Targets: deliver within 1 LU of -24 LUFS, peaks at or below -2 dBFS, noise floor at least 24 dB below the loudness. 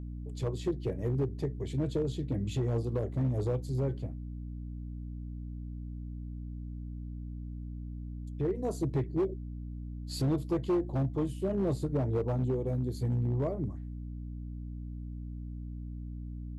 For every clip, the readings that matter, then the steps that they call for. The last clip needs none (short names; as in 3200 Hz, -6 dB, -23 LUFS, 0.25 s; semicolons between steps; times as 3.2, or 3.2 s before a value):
clipped 1.4%; flat tops at -24.0 dBFS; hum 60 Hz; harmonics up to 300 Hz; hum level -37 dBFS; loudness -34.5 LUFS; peak -24.0 dBFS; loudness target -24.0 LUFS
-> clip repair -24 dBFS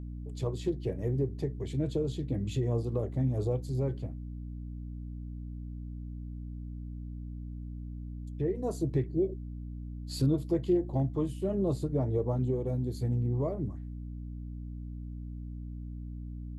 clipped 0.0%; hum 60 Hz; harmonics up to 300 Hz; hum level -37 dBFS
-> notches 60/120/180/240/300 Hz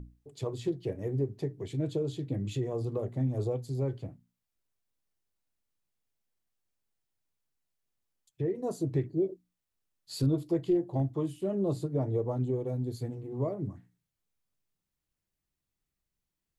hum none; loudness -33.0 LUFS; peak -18.0 dBFS; loudness target -24.0 LUFS
-> gain +9 dB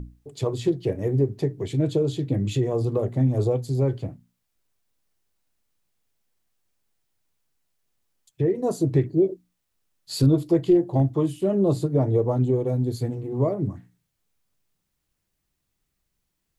loudness -24.0 LUFS; peak -9.0 dBFS; noise floor -78 dBFS